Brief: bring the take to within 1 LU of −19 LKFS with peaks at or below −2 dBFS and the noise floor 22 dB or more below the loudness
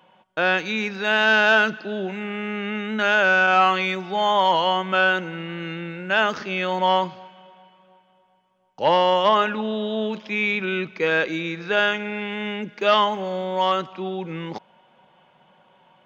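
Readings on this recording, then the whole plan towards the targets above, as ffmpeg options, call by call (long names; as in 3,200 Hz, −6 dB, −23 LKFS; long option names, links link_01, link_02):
integrated loudness −21.5 LKFS; sample peak −5.0 dBFS; target loudness −19.0 LKFS
→ -af "volume=2.5dB"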